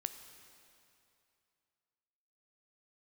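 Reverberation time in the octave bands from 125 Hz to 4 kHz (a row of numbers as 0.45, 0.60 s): 2.8, 2.6, 2.6, 2.7, 2.5, 2.4 s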